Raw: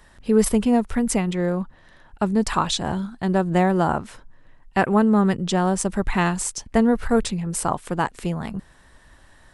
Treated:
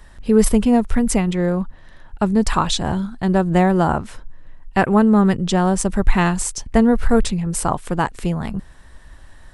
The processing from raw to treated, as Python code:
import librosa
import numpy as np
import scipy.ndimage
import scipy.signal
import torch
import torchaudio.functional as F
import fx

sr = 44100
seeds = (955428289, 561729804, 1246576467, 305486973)

y = fx.low_shelf(x, sr, hz=83.0, db=10.5)
y = F.gain(torch.from_numpy(y), 2.5).numpy()